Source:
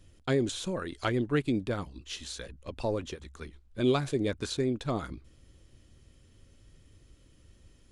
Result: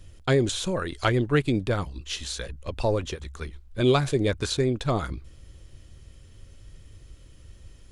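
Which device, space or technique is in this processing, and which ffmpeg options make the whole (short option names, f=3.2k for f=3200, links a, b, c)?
low shelf boost with a cut just above: -af "lowshelf=f=110:g=5,equalizer=f=250:t=o:w=0.97:g=-5.5,volume=7dB"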